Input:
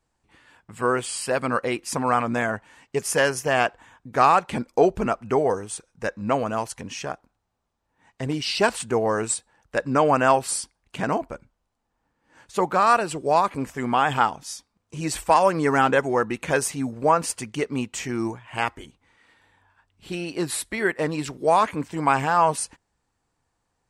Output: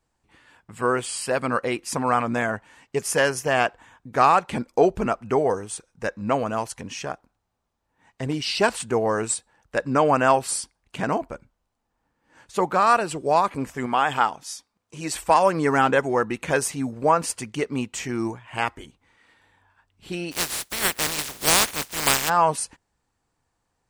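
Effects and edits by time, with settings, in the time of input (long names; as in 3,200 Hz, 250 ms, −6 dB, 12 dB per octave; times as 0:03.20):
0:13.86–0:15.23: low-shelf EQ 210 Hz −9.5 dB
0:20.31–0:22.28: compressing power law on the bin magnitudes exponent 0.19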